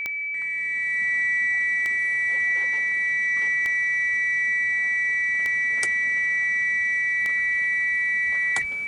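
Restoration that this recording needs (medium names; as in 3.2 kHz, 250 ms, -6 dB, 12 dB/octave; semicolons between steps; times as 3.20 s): de-click; band-stop 2.3 kHz, Q 30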